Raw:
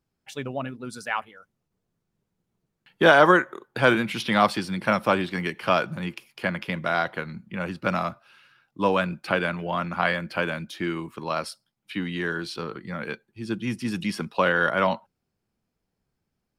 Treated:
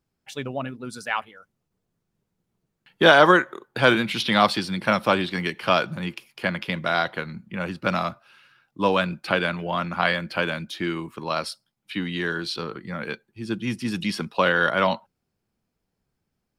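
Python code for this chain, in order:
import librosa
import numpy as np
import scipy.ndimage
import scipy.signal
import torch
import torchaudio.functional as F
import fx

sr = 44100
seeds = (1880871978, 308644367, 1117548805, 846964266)

y = fx.dynamic_eq(x, sr, hz=3900.0, q=1.7, threshold_db=-45.0, ratio=4.0, max_db=7)
y = y * librosa.db_to_amplitude(1.0)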